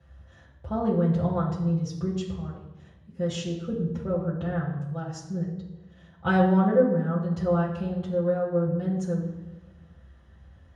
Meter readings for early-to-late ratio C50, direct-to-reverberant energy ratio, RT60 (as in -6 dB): 4.5 dB, -9.0 dB, 1.1 s